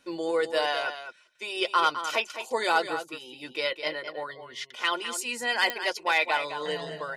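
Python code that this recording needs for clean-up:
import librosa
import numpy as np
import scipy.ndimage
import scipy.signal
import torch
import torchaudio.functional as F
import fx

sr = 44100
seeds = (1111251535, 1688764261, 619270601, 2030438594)

y = fx.fix_declip(x, sr, threshold_db=-13.0)
y = fx.fix_declick_ar(y, sr, threshold=10.0)
y = fx.fix_echo_inverse(y, sr, delay_ms=209, level_db=-10.0)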